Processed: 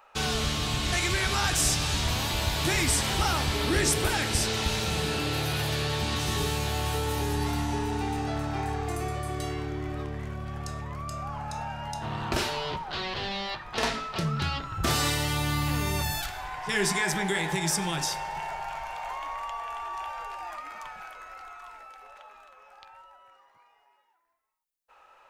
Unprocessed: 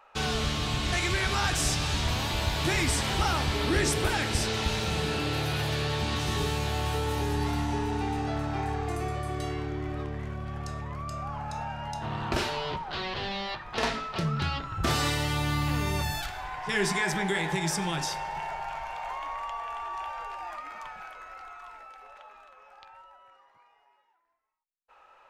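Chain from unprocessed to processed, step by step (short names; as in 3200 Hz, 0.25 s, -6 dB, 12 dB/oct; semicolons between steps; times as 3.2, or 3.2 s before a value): high shelf 6700 Hz +8.5 dB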